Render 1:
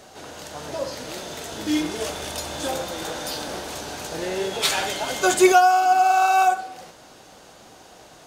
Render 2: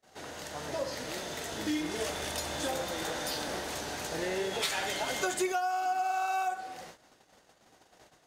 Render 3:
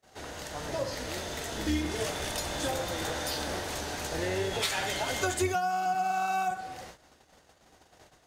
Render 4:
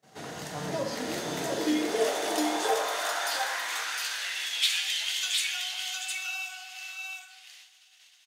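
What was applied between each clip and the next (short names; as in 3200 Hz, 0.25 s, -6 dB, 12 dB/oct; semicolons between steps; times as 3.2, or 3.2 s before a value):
gate -45 dBFS, range -31 dB; bell 1900 Hz +5.5 dB 0.34 oct; compressor 6:1, threshold -24 dBFS, peak gain reduction 14 dB; gain -4.5 dB
octaver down 2 oct, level -1 dB; gain +1.5 dB
high-pass sweep 150 Hz -> 2900 Hz, 0.55–4.18; echo 0.71 s -3.5 dB; reverb, pre-delay 3 ms, DRR 6 dB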